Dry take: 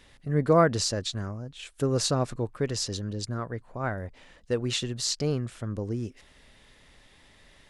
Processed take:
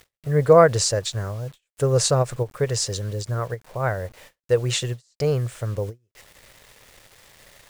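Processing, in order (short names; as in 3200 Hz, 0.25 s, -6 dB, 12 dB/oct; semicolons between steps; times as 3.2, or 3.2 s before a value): ten-band EQ 125 Hz +10 dB, 250 Hz -11 dB, 500 Hz +11 dB, 1000 Hz +3 dB, 2000 Hz +5 dB, 8000 Hz +9 dB; requantised 8-bit, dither none; ending taper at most 390 dB/s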